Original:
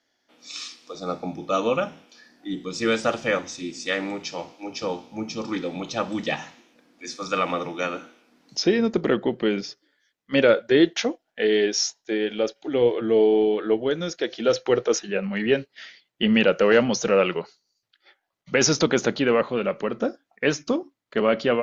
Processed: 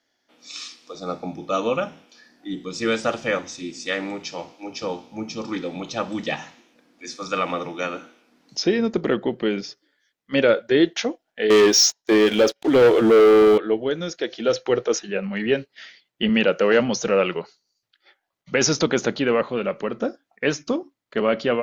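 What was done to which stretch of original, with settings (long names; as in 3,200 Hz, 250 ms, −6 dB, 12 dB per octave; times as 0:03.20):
0:11.50–0:13.58: leveller curve on the samples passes 3
0:16.29–0:16.80: high-pass filter 130 Hz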